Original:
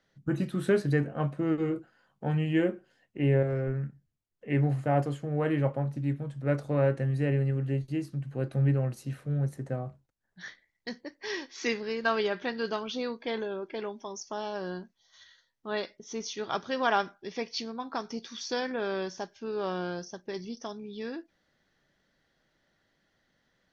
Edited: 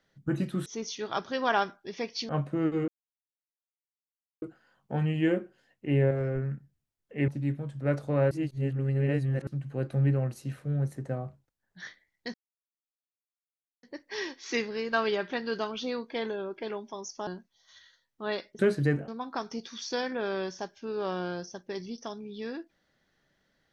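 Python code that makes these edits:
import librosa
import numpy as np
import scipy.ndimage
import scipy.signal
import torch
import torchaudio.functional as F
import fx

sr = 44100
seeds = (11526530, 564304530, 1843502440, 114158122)

y = fx.edit(x, sr, fx.swap(start_s=0.66, length_s=0.49, other_s=16.04, other_length_s=1.63),
    fx.insert_silence(at_s=1.74, length_s=1.54),
    fx.cut(start_s=4.6, length_s=1.29),
    fx.reverse_span(start_s=6.92, length_s=1.16),
    fx.insert_silence(at_s=10.95, length_s=1.49),
    fx.cut(start_s=14.39, length_s=0.33), tone=tone)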